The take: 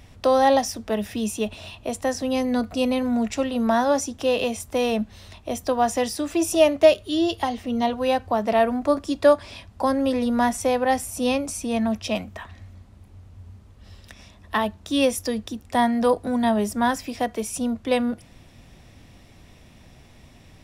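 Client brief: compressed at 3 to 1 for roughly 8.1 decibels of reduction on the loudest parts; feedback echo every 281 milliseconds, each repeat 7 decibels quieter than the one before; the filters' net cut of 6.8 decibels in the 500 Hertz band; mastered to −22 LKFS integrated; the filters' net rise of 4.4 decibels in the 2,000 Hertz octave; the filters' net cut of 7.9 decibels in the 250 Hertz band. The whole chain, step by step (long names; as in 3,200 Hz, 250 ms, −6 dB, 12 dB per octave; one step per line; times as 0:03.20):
parametric band 250 Hz −7 dB
parametric band 500 Hz −7.5 dB
parametric band 2,000 Hz +6 dB
downward compressor 3 to 1, threshold −26 dBFS
repeating echo 281 ms, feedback 45%, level −7 dB
level +7.5 dB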